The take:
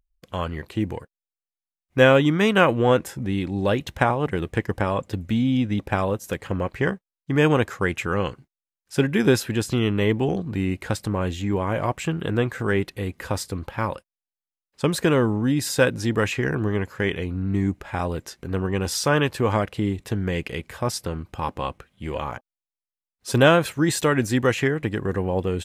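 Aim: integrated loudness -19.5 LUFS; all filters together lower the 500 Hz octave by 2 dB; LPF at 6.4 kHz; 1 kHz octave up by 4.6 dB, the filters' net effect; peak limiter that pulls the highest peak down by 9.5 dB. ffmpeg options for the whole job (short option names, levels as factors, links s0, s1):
-af "lowpass=6400,equalizer=f=500:t=o:g=-4,equalizer=f=1000:t=o:g=7,volume=1.88,alimiter=limit=0.562:level=0:latency=1"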